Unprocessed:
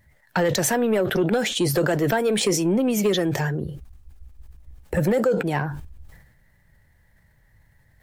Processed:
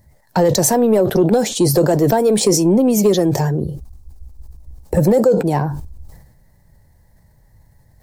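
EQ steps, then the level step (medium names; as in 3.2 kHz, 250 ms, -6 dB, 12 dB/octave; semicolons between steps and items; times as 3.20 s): high-order bell 2.1 kHz -11.5 dB; +7.5 dB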